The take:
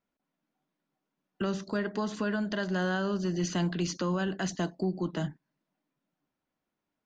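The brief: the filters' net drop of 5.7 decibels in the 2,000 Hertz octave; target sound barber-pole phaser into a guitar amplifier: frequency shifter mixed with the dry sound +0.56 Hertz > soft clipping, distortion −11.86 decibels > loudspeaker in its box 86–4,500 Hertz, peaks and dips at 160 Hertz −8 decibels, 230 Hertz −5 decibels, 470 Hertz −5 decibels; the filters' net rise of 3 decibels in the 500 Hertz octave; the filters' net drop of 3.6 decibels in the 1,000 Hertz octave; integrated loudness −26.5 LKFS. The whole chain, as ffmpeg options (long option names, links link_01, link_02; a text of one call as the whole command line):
ffmpeg -i in.wav -filter_complex "[0:a]equalizer=frequency=500:width_type=o:gain=9,equalizer=frequency=1000:width_type=o:gain=-7,equalizer=frequency=2000:width_type=o:gain=-5.5,asplit=2[link_01][link_02];[link_02]afreqshift=0.56[link_03];[link_01][link_03]amix=inputs=2:normalize=1,asoftclip=threshold=-29.5dB,highpass=86,equalizer=frequency=160:width_type=q:width=4:gain=-8,equalizer=frequency=230:width_type=q:width=4:gain=-5,equalizer=frequency=470:width_type=q:width=4:gain=-5,lowpass=frequency=4500:width=0.5412,lowpass=frequency=4500:width=1.3066,volume=12.5dB" out.wav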